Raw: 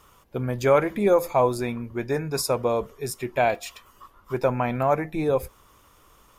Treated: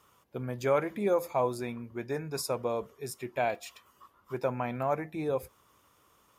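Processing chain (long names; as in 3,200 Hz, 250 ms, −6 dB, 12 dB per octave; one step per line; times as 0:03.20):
high-pass filter 93 Hz 12 dB per octave
level −8 dB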